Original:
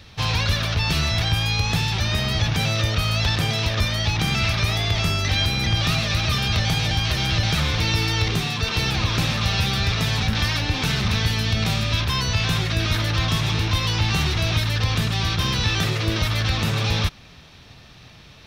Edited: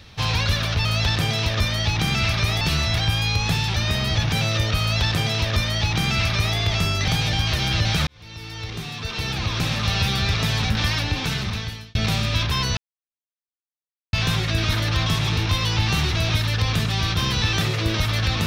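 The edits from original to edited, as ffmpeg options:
ffmpeg -i in.wav -filter_complex "[0:a]asplit=7[link_01][link_02][link_03][link_04][link_05][link_06][link_07];[link_01]atrim=end=0.852[link_08];[link_02]atrim=start=3.048:end=4.812[link_09];[link_03]atrim=start=0.848:end=5.322[link_10];[link_04]atrim=start=6.658:end=7.65,asetpts=PTS-STARTPTS,afade=type=out:start_time=0.988:duration=0.004:curve=hsin[link_11];[link_05]atrim=start=7.65:end=11.53,asetpts=PTS-STARTPTS,afade=type=in:duration=1.93,afade=type=out:start_time=2.7:duration=1.18:curve=qsin[link_12];[link_06]atrim=start=11.53:end=12.35,asetpts=PTS-STARTPTS,afade=type=in:duration=0.004:curve=hsin,afade=type=out:start_time=0.816:duration=0.004:curve=hsin,apad=pad_dur=1.36[link_13];[link_07]atrim=start=12.35,asetpts=PTS-STARTPTS,afade=type=in:duration=0.004:curve=hsin[link_14];[link_08][link_09]acrossfade=duration=0.004:curve1=hsin:curve2=hsin[link_15];[link_15][link_10]acrossfade=duration=0.004:curve1=hsin:curve2=hsin[link_16];[link_11][link_12][link_13][link_14]concat=n=4:v=0:a=1[link_17];[link_16][link_17]acrossfade=duration=0.004:curve1=hsin:curve2=hsin" out.wav

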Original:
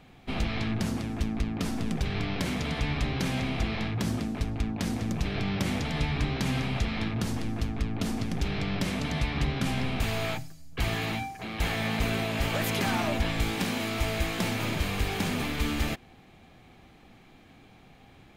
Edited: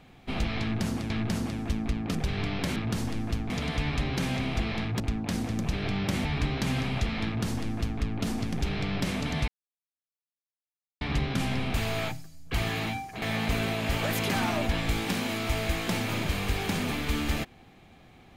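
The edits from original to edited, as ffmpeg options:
ffmpeg -i in.wav -filter_complex "[0:a]asplit=9[link_01][link_02][link_03][link_04][link_05][link_06][link_07][link_08][link_09];[link_01]atrim=end=1.102[link_10];[link_02]atrim=start=0.608:end=1.662[link_11];[link_03]atrim=start=1.918:end=2.532[link_12];[link_04]atrim=start=7.048:end=7.792[link_13];[link_05]atrim=start=2.528:end=4.032[link_14];[link_06]atrim=start=4.518:end=5.772[link_15];[link_07]atrim=start=6.038:end=9.27,asetpts=PTS-STARTPTS,afade=type=out:start_time=3.228:duration=0.004:curve=hsin,apad=pad_dur=1.53[link_16];[link_08]atrim=start=9.27:end=11.482,asetpts=PTS-STARTPTS,afade=type=in:duration=0.004:curve=hsin[link_17];[link_09]atrim=start=11.728[link_18];[link_10][link_11]acrossfade=duration=0.004:curve1=hsin:curve2=hsin[link_19];[link_19][link_12]acrossfade=duration=0.004:curve1=hsin:curve2=hsin[link_20];[link_20][link_13]acrossfade=duration=0.004:curve1=hsin:curve2=hsin[link_21];[link_21][link_14]acrossfade=duration=0.004:curve1=hsin:curve2=hsin[link_22];[link_22][link_15]acrossfade=duration=0.004:curve1=hsin:curve2=hsin[link_23];[link_16][link_17]concat=n=2:v=0:a=1[link_24];[link_23][link_24]acrossfade=duration=0.004:curve1=hsin:curve2=hsin[link_25];[link_25][link_18]acrossfade=duration=0.004:curve1=hsin:curve2=hsin" out.wav

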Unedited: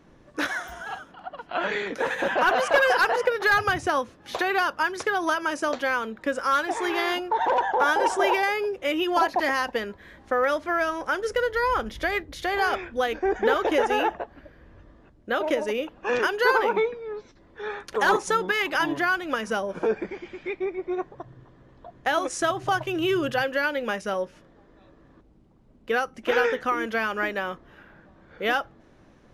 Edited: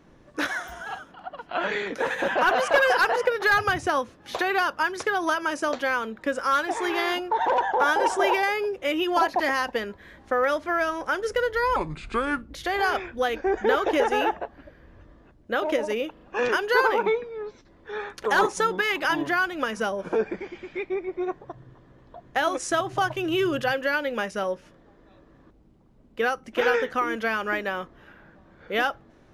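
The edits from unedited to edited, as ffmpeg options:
ffmpeg -i in.wav -filter_complex "[0:a]asplit=5[link_01][link_02][link_03][link_04][link_05];[link_01]atrim=end=11.764[link_06];[link_02]atrim=start=11.76:end=12.29,asetpts=PTS-STARTPTS,asetrate=31311,aresample=44100[link_07];[link_03]atrim=start=12.286:end=15.952[link_08];[link_04]atrim=start=15.908:end=15.952[link_09];[link_05]atrim=start=15.908[link_10];[link_06][link_07]acrossfade=duration=0.004:curve1=hsin:curve2=hsin[link_11];[link_11][link_08]acrossfade=duration=0.004:curve1=hsin:curve2=hsin[link_12];[link_12][link_09]acrossfade=duration=0.004:curve1=hsin:curve2=hsin[link_13];[link_13][link_10]acrossfade=duration=0.004:curve1=hsin:curve2=hsin" out.wav

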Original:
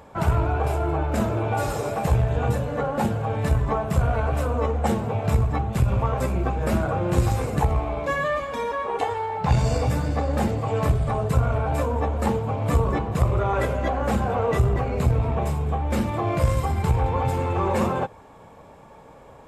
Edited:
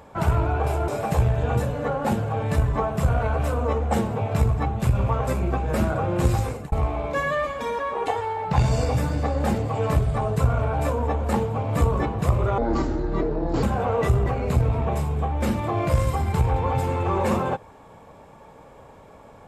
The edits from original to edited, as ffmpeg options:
ffmpeg -i in.wav -filter_complex "[0:a]asplit=5[link_01][link_02][link_03][link_04][link_05];[link_01]atrim=end=0.882[link_06];[link_02]atrim=start=1.808:end=7.65,asetpts=PTS-STARTPTS,afade=type=out:start_time=5.412:duration=0.43:curve=qsin[link_07];[link_03]atrim=start=7.65:end=13.514,asetpts=PTS-STARTPTS,afade=type=in:duration=0.004:curve=hsin[link_08];[link_04]atrim=start=13.51:end=14.13,asetpts=PTS-STARTPTS,asetrate=26019,aresample=44100,atrim=end_sample=46342,asetpts=PTS-STARTPTS[link_09];[link_05]atrim=start=14.126[link_10];[link_07][link_08]concat=n=2:v=0:a=1[link_11];[link_06][link_11]acrossfade=duration=0.004:curve1=hsin:curve2=hsin[link_12];[link_12][link_09]acrossfade=duration=0.004:curve1=hsin:curve2=hsin[link_13];[link_13][link_10]acrossfade=duration=0.004:curve1=hsin:curve2=hsin" out.wav

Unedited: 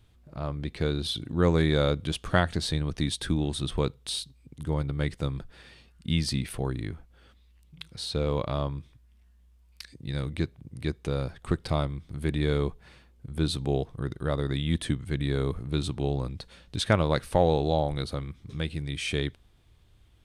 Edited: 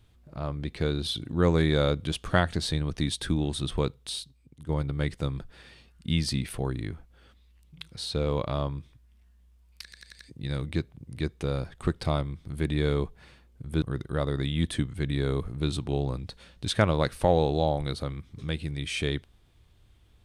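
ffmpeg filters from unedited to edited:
ffmpeg -i in.wav -filter_complex "[0:a]asplit=7[link_01][link_02][link_03][link_04][link_05][link_06][link_07];[link_01]atrim=end=4.69,asetpts=PTS-STARTPTS,afade=type=out:start_time=3.79:duration=0.9:silence=0.354813[link_08];[link_02]atrim=start=4.69:end=9.922,asetpts=PTS-STARTPTS,afade=type=in:duration=0.004:curve=hsin:silence=0.354813[link_09];[link_03]atrim=start=9.828:end=9.922[link_10];[link_04]atrim=start=9.828:end=9.922[link_11];[link_05]atrim=start=9.828:end=9.922[link_12];[link_06]atrim=start=9.828:end=13.462[link_13];[link_07]atrim=start=13.928[link_14];[link_08][link_09]concat=n=2:v=0:a=1[link_15];[link_15][link_10]acrossfade=duration=0.004:curve1=hsin:curve2=hsin[link_16];[link_16][link_11]acrossfade=duration=0.004:curve1=hsin:curve2=hsin[link_17];[link_17][link_12]acrossfade=duration=0.004:curve1=hsin:curve2=hsin[link_18];[link_18][link_13]acrossfade=duration=0.004:curve1=hsin:curve2=hsin[link_19];[link_19][link_14]acrossfade=duration=0.004:curve1=hsin:curve2=hsin" out.wav

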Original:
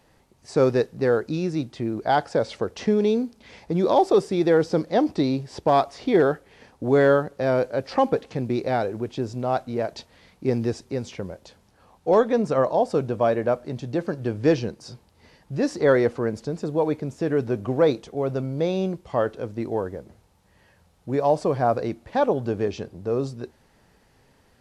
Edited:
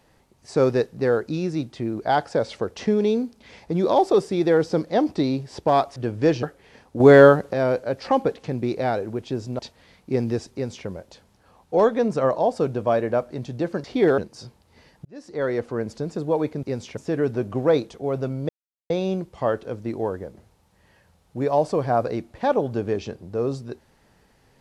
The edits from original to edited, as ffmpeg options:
ffmpeg -i in.wav -filter_complex "[0:a]asplit=12[link_01][link_02][link_03][link_04][link_05][link_06][link_07][link_08][link_09][link_10][link_11][link_12];[link_01]atrim=end=5.962[link_13];[link_02]atrim=start=14.178:end=14.652[link_14];[link_03]atrim=start=6.298:end=6.872[link_15];[link_04]atrim=start=6.868:end=7.402,asetpts=PTS-STARTPTS,volume=7dB[link_16];[link_05]atrim=start=7.398:end=9.462[link_17];[link_06]atrim=start=9.928:end=14.182[link_18];[link_07]atrim=start=5.958:end=6.302[link_19];[link_08]atrim=start=14.648:end=15.52,asetpts=PTS-STARTPTS,afade=type=out:start_time=0.868:duration=0.004:curve=hsin[link_20];[link_09]atrim=start=15.52:end=17.102,asetpts=PTS-STARTPTS,afade=type=in:duration=0.89[link_21];[link_10]atrim=start=10.868:end=11.212[link_22];[link_11]atrim=start=17.098:end=18.62,asetpts=PTS-STARTPTS,afade=type=out:start_time=1.518:duration=0.004:curve=hsin,apad=pad_dur=0.41[link_23];[link_12]atrim=start=18.62,asetpts=PTS-STARTPTS,afade=type=in:duration=0.004:curve=hsin[link_24];[link_13][link_14]acrossfade=duration=0.004:curve1=hsin:curve2=hsin[link_25];[link_25][link_15]acrossfade=duration=0.004:curve1=hsin:curve2=hsin[link_26];[link_26][link_16]acrossfade=duration=0.004:curve1=hsin:curve2=hsin[link_27];[link_27][link_17]acrossfade=duration=0.004:curve1=hsin:curve2=hsin[link_28];[link_28][link_18]acrossfade=duration=0.004:curve1=hsin:curve2=hsin[link_29];[link_29][link_19]acrossfade=duration=0.004:curve1=hsin:curve2=hsin[link_30];[link_20][link_21]concat=n=2:v=0:a=1[link_31];[link_30][link_31]acrossfade=duration=0.004:curve1=hsin:curve2=hsin[link_32];[link_32][link_22]acrossfade=duration=0.004:curve1=hsin:curve2=hsin[link_33];[link_23][link_24]concat=n=2:v=0:a=1[link_34];[link_33][link_34]acrossfade=duration=0.004:curve1=hsin:curve2=hsin" out.wav

